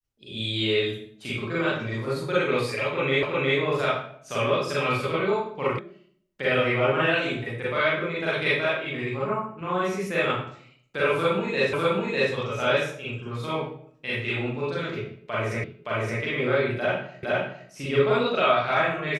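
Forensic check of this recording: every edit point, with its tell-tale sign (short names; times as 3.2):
3.23 repeat of the last 0.36 s
5.79 sound cut off
11.73 repeat of the last 0.6 s
15.64 repeat of the last 0.57 s
17.23 repeat of the last 0.46 s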